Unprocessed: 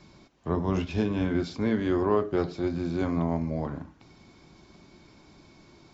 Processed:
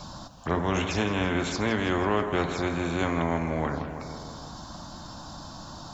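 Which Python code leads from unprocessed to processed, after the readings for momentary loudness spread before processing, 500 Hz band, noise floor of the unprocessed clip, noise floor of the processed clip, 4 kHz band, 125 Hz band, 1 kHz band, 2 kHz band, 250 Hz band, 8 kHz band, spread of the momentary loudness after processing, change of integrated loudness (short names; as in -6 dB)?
9 LU, 0.0 dB, -56 dBFS, -43 dBFS, +9.5 dB, +0.5 dB, +6.0 dB, +9.5 dB, -1.0 dB, n/a, 15 LU, +0.5 dB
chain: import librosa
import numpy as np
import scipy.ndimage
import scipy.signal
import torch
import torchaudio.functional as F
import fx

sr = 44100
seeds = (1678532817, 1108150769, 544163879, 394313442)

y = fx.env_phaser(x, sr, low_hz=330.0, high_hz=4900.0, full_db=-26.0)
y = fx.echo_feedback(y, sr, ms=163, feedback_pct=57, wet_db=-16.0)
y = fx.spectral_comp(y, sr, ratio=2.0)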